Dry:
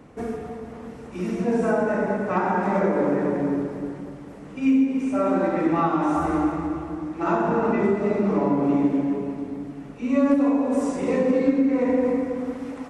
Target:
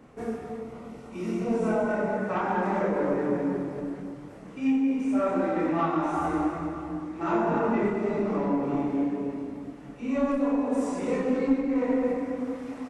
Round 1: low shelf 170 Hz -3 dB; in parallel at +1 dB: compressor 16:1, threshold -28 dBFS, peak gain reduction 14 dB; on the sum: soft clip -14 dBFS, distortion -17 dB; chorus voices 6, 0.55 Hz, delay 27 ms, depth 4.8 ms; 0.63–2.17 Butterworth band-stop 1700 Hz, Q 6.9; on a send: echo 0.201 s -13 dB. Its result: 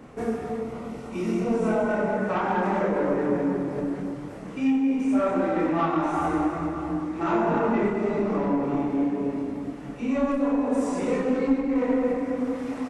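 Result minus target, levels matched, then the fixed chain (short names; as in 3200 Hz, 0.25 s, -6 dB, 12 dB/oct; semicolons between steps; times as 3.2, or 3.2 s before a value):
compressor: peak gain reduction +14 dB
low shelf 170 Hz -3 dB; soft clip -14 dBFS, distortion -20 dB; chorus voices 6, 0.55 Hz, delay 27 ms, depth 4.8 ms; 0.63–2.17 Butterworth band-stop 1700 Hz, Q 6.9; on a send: echo 0.201 s -13 dB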